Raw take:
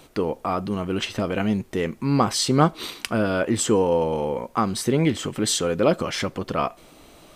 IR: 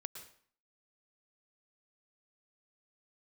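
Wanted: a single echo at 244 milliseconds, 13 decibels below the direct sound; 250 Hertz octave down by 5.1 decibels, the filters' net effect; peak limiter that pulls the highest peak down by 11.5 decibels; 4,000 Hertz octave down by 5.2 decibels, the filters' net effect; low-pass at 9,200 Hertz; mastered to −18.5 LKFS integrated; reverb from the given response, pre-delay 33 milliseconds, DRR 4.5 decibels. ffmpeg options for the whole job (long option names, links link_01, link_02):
-filter_complex "[0:a]lowpass=9200,equalizer=frequency=250:width_type=o:gain=-7,equalizer=frequency=4000:width_type=o:gain=-6.5,alimiter=limit=-18dB:level=0:latency=1,aecho=1:1:244:0.224,asplit=2[link_01][link_02];[1:a]atrim=start_sample=2205,adelay=33[link_03];[link_02][link_03]afir=irnorm=-1:irlink=0,volume=-1.5dB[link_04];[link_01][link_04]amix=inputs=2:normalize=0,volume=8.5dB"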